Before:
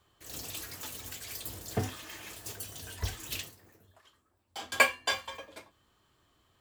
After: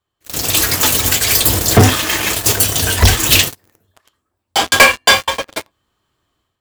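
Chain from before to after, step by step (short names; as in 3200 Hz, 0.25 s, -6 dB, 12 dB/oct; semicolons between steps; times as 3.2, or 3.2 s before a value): AGC gain up to 11 dB; sample leveller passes 5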